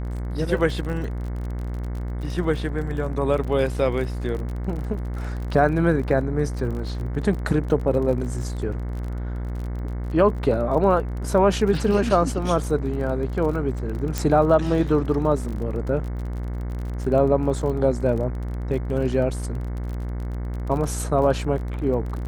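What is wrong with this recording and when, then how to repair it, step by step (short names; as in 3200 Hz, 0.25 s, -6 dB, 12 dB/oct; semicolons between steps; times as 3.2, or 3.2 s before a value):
buzz 60 Hz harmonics 37 -28 dBFS
crackle 36/s -31 dBFS
14.18 pop -9 dBFS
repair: de-click; de-hum 60 Hz, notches 37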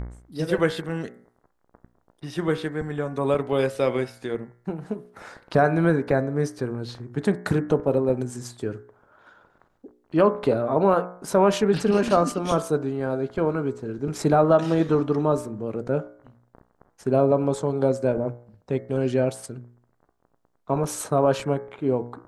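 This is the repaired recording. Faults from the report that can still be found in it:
none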